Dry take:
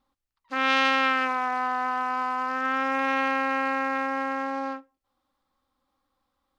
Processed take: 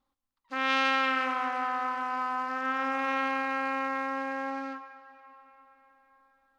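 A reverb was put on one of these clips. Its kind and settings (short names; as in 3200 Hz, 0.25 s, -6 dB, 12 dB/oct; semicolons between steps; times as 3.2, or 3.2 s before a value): digital reverb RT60 4.8 s, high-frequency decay 0.65×, pre-delay 5 ms, DRR 10 dB; gain -4.5 dB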